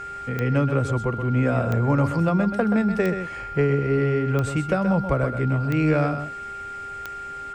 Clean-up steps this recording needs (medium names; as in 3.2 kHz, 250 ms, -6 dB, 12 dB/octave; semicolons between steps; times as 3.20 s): de-click; de-hum 397.5 Hz, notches 12; band-stop 1.4 kHz, Q 30; inverse comb 128 ms -8.5 dB